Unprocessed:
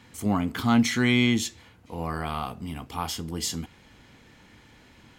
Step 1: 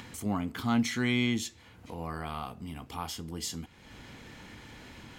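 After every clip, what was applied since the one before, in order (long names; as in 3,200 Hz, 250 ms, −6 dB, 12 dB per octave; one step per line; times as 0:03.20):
upward compression, threshold −30 dBFS
level −6.5 dB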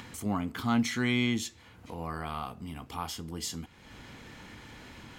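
parametric band 1,200 Hz +2 dB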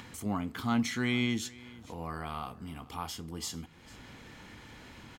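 single-tap delay 448 ms −21 dB
level −2 dB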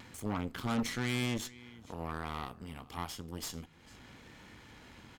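harmonic generator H 8 −16 dB, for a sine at −17.5 dBFS
pitch vibrato 0.97 Hz 25 cents
level −4 dB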